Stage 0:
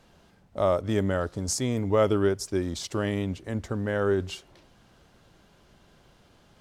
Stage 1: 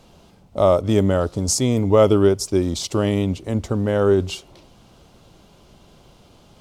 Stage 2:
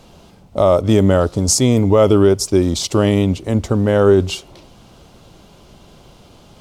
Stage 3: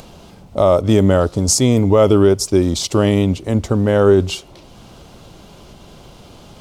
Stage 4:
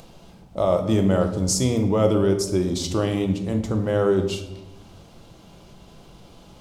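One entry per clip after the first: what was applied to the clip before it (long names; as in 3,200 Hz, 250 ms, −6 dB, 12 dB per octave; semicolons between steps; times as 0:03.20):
parametric band 1,700 Hz −10.5 dB 0.54 octaves; level +8.5 dB
boost into a limiter +6.5 dB; level −1 dB
upward compression, threshold −34 dBFS
rectangular room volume 350 cubic metres, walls mixed, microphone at 0.7 metres; level −8.5 dB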